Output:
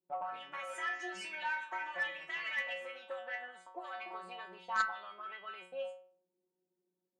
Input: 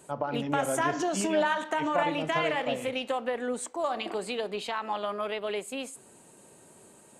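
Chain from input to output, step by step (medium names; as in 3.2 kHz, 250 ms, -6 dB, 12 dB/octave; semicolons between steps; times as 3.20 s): auto-wah 270–2000 Hz, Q 2.4, up, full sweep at -26 dBFS; gate -53 dBFS, range -24 dB; inharmonic resonator 180 Hz, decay 0.53 s, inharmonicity 0.002; Chebyshev shaper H 3 -12 dB, 4 -38 dB, 5 -21 dB, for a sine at -36 dBFS; trim +18 dB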